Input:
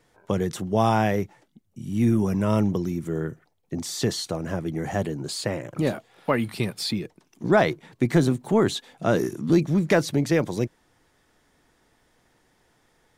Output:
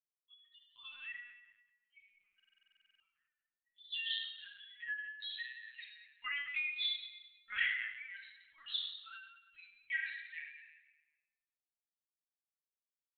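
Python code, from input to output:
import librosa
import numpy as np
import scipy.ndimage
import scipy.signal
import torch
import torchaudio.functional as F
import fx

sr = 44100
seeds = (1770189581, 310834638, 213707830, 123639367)

p1 = fx.bin_expand(x, sr, power=3.0)
p2 = fx.doppler_pass(p1, sr, speed_mps=6, closest_m=1.6, pass_at_s=4.64)
p3 = scipy.signal.sosfilt(scipy.signal.ellip(4, 1.0, 70, 1900.0, 'highpass', fs=sr, output='sos'), p2)
p4 = fx.rider(p3, sr, range_db=4, speed_s=0.5)
p5 = p3 + (p4 * librosa.db_to_amplitude(2.0))
p6 = fx.echo_feedback(p5, sr, ms=103, feedback_pct=59, wet_db=-18.5)
p7 = fx.room_shoebox(p6, sr, seeds[0], volume_m3=960.0, walls='mixed', distance_m=2.8)
p8 = fx.lpc_vocoder(p7, sr, seeds[1], excitation='pitch_kept', order=10)
p9 = fx.buffer_glitch(p8, sr, at_s=(2.35,), block=2048, repeats=13)
y = p9 * librosa.db_to_amplitude(12.0)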